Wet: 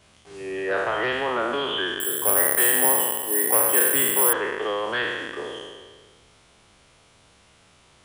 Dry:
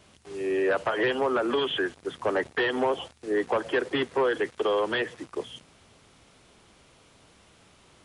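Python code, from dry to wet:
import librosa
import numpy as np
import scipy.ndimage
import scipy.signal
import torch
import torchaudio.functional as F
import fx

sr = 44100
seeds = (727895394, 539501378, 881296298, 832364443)

y = fx.spec_trails(x, sr, decay_s=1.59)
y = fx.peak_eq(y, sr, hz=300.0, db=-4.5, octaves=1.7)
y = fx.resample_bad(y, sr, factor=4, down='filtered', up='zero_stuff', at=(2.0, 4.33))
y = y * 10.0 ** (-1.0 / 20.0)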